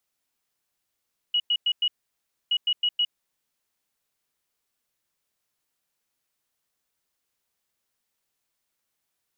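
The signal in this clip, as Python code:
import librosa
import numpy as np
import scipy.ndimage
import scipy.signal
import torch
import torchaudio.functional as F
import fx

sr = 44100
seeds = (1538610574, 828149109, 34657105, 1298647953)

y = fx.beep_pattern(sr, wave='sine', hz=2910.0, on_s=0.06, off_s=0.1, beeps=4, pause_s=0.63, groups=2, level_db=-19.5)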